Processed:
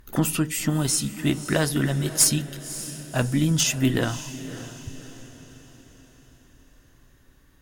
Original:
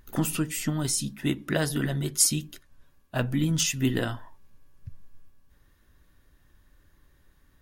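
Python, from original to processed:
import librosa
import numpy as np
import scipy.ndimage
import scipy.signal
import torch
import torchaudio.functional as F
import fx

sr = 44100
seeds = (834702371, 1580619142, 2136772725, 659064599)

p1 = fx.tube_stage(x, sr, drive_db=11.0, bias=0.35)
p2 = p1 + fx.echo_diffused(p1, sr, ms=565, feedback_pct=47, wet_db=-13.5, dry=0)
y = p2 * librosa.db_to_amplitude(5.0)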